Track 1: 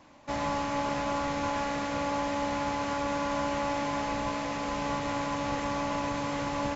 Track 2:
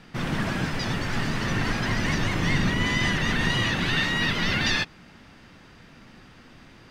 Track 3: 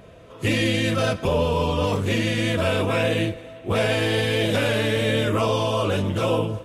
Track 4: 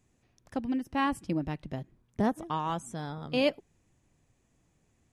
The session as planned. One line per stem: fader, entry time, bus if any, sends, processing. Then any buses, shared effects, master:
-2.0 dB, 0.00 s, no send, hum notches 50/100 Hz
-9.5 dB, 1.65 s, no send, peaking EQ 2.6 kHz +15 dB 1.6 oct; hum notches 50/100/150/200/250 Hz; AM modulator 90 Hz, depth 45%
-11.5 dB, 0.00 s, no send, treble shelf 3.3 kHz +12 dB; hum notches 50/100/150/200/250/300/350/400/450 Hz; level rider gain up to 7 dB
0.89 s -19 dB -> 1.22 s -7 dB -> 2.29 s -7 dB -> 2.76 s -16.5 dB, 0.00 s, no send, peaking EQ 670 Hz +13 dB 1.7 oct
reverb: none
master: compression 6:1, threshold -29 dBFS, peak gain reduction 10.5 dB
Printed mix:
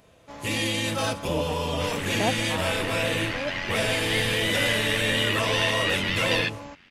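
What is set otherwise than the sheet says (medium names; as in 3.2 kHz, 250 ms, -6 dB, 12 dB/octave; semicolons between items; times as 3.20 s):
stem 1 -2.0 dB -> -10.0 dB; master: missing compression 6:1, threshold -29 dBFS, peak gain reduction 10.5 dB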